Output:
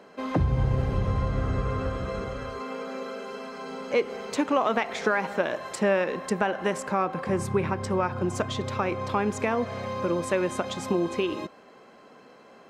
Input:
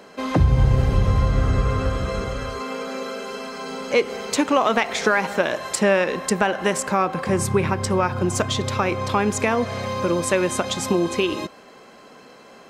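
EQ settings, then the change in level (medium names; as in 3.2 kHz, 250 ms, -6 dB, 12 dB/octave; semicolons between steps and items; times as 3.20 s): bass shelf 75 Hz -7.5 dB; treble shelf 3.2 kHz -9.5 dB; -4.5 dB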